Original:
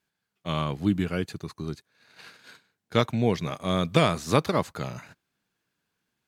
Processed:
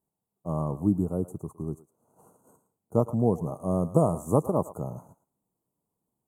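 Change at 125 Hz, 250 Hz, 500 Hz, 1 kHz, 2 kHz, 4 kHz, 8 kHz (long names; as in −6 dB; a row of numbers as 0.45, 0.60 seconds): 0.0 dB, 0.0 dB, 0.0 dB, −4.0 dB, below −30 dB, below −40 dB, −5.0 dB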